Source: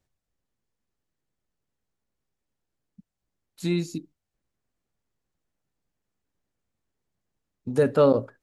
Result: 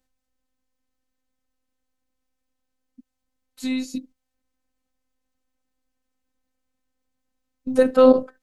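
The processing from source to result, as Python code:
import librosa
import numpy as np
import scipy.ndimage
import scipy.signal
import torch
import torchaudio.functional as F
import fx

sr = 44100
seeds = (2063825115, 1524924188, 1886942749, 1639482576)

p1 = fx.level_steps(x, sr, step_db=18)
p2 = x + (p1 * 10.0 ** (-0.5 / 20.0))
p3 = fx.robotise(p2, sr, hz=258.0)
y = p3 * 10.0 ** (2.5 / 20.0)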